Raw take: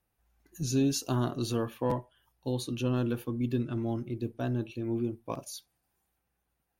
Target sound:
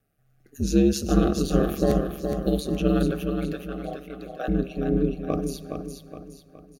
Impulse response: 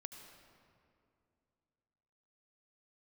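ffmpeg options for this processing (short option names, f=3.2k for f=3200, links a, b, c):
-filter_complex "[0:a]asettb=1/sr,asplit=3[a][b][c];[a]atrim=end=1.634[d];[b]atrim=start=1.63:end=2.6,asetpts=PTS-STARTPTS,afade=t=in:d=0.004:c=qsin,afade=t=out:st=0.966:d=0.004:c=qsin,aemphasis=mode=production:type=50kf[e];[c]atrim=start=2.596[f];[d][e]acrossfade=d=0.004:c1=hsin:c2=qsin[g];[g][f]acrossfade=d=0.004:c1=qsin:c2=hsin,asettb=1/sr,asplit=3[h][i][j];[h]atrim=end=3.114[k];[i]atrim=start=3.11:end=4.48,asetpts=PTS-STARTPTS,afade=t=in:d=0.004:c=qsin,afade=t=out:st=1.366:d=0.004:c=qsin,highpass=f=510:w=0.5412,highpass=f=510:w=1.3066[l];[j]atrim=start=4.476[m];[k][l]acrossfade=d=0.004:c1=hsin:c2=qsin[n];[n][m]acrossfade=d=0.004:c1=qsin:c2=hsin,asplit=2[o][p];[p]adynamicsmooth=sensitivity=2:basefreq=2.5k,volume=-0.5dB[q];[o][q]amix=inputs=2:normalize=0,aeval=exprs='val(0)*sin(2*PI*72*n/s)':c=same,asuperstop=centerf=940:order=8:qfactor=2.9,aecho=1:1:417|834|1251|1668|2085:0.501|0.21|0.0884|0.0371|0.0156,asplit=2[r][s];[1:a]atrim=start_sample=2205[t];[s][t]afir=irnorm=-1:irlink=0,volume=-6dB[u];[r][u]amix=inputs=2:normalize=0,volume=3dB"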